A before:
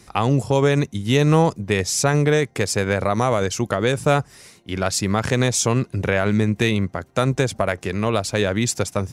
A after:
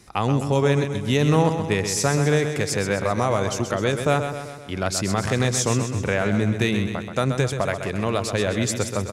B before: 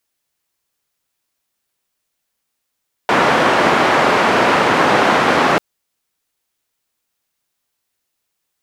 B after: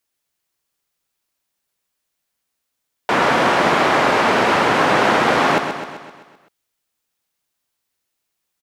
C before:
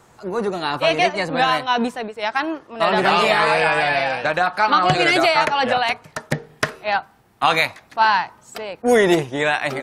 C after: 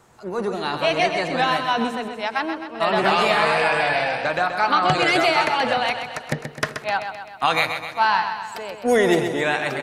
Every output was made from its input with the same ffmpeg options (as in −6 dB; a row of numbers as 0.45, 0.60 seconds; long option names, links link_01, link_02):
-af "aecho=1:1:129|258|387|516|645|774|903:0.398|0.223|0.125|0.0699|0.0392|0.0219|0.0123,volume=-3dB"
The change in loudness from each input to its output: −2.0, −2.0, −2.0 LU